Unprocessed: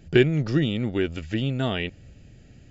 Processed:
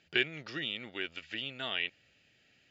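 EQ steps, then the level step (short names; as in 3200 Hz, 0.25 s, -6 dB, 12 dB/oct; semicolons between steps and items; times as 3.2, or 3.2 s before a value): band-pass 3000 Hz, Q 0.96; air absorption 60 m; 0.0 dB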